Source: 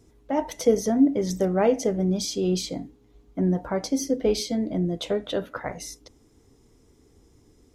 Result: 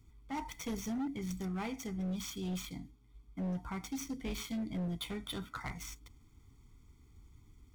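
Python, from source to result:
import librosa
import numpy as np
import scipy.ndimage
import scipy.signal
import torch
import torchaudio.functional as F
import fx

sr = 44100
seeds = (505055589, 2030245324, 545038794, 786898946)

y = scipy.signal.medfilt(x, 9)
y = fx.low_shelf(y, sr, hz=120.0, db=5.5)
y = y + 0.85 * np.pad(y, (int(0.9 * sr / 1000.0), 0))[:len(y)]
y = fx.rider(y, sr, range_db=4, speed_s=2.0)
y = fx.tone_stack(y, sr, knobs='5-5-5')
y = np.clip(10.0 ** (35.5 / 20.0) * y, -1.0, 1.0) / 10.0 ** (35.5 / 20.0)
y = y * 10.0 ** (2.0 / 20.0)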